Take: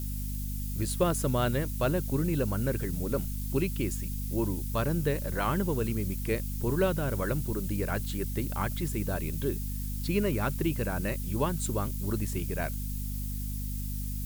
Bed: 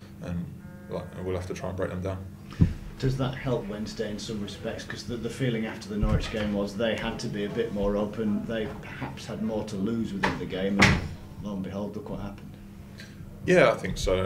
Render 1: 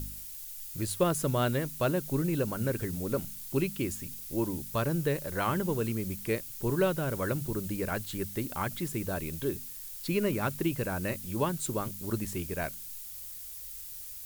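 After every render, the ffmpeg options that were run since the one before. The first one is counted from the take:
-af "bandreject=f=50:t=h:w=4,bandreject=f=100:t=h:w=4,bandreject=f=150:t=h:w=4,bandreject=f=200:t=h:w=4,bandreject=f=250:t=h:w=4"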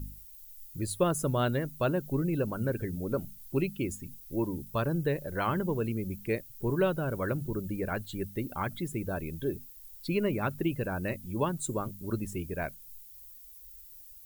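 -af "afftdn=nr=14:nf=-43"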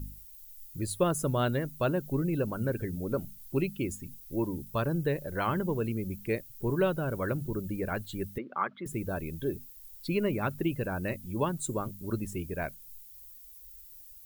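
-filter_complex "[0:a]asettb=1/sr,asplit=3[a][b][c];[a]atrim=end=8.384[d];[b]atrim=start=8.38:end=8.86,asetpts=PTS-STARTPTS,afade=t=in:d=0.004:c=qsin,afade=t=out:st=0.476:d=0.004:c=qsin,highpass=f=220:w=0.5412,highpass=f=220:w=1.3066,equalizer=f=280:t=q:w=4:g=-9,equalizer=f=690:t=q:w=4:g=-3,equalizer=f=1.2k:t=q:w=4:g=8,equalizer=f=2.7k:t=q:w=4:g=-5,lowpass=f=2.9k:w=0.5412,lowpass=f=2.9k:w=1.3066[e];[c]atrim=start=8.856[f];[d][e]acrossfade=d=0.004:c1=hsin:c2=qsin[g];[g][f]acrossfade=d=0.004:c1=qsin:c2=hsin"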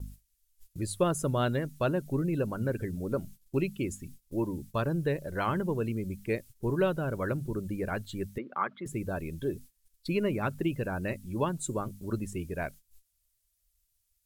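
-af "agate=range=-16dB:threshold=-45dB:ratio=16:detection=peak,lowpass=11k"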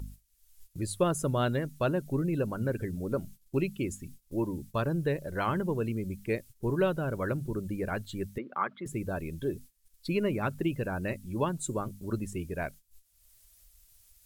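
-af "acompressor=mode=upward:threshold=-45dB:ratio=2.5"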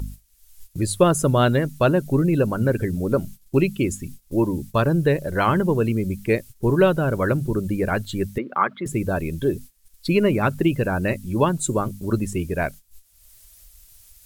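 -af "volume=10.5dB"

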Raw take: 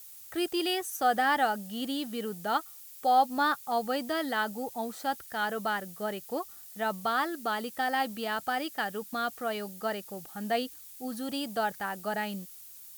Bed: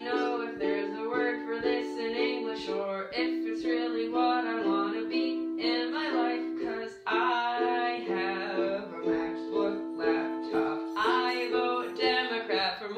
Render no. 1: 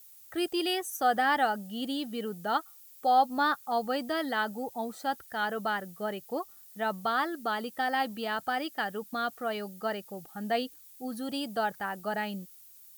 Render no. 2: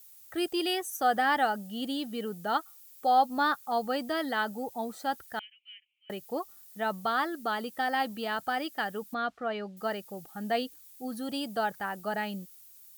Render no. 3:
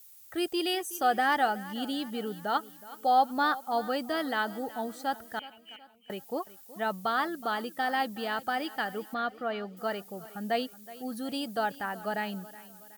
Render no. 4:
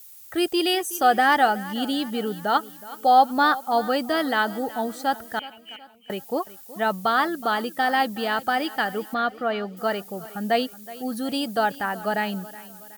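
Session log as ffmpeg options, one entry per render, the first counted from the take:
-af "afftdn=nr=7:nf=-49"
-filter_complex "[0:a]asettb=1/sr,asplit=3[a][b][c];[a]atrim=end=5.394[d];[b]atrim=start=5.39:end=6.1,asetpts=PTS-STARTPTS,afade=t=in:d=0.004:c=qsin,afade=t=out:st=0.706:d=0.004:c=qsin,asuperpass=centerf=2600:order=8:qfactor=3[e];[c]atrim=start=6.096[f];[d][e]acrossfade=d=0.004:c1=hsin:c2=qsin[g];[g][f]acrossfade=d=0.004:c1=qsin:c2=hsin,asettb=1/sr,asplit=3[h][i][j];[h]atrim=end=9.144[k];[i]atrim=start=9.14:end=9.77,asetpts=PTS-STARTPTS,afade=t=in:d=0.004:c=qsin,afade=t=out:st=0.626:d=0.004:c=qsin,lowpass=3.4k[l];[j]atrim=start=9.766[m];[k][l]acrossfade=d=0.004:c1=hsin:c2=qsin[n];[n][m]acrossfade=d=0.004:c1=qsin:c2=hsin"
-af "aecho=1:1:371|742|1113|1484:0.126|0.0592|0.0278|0.0131"
-af "volume=7.5dB"

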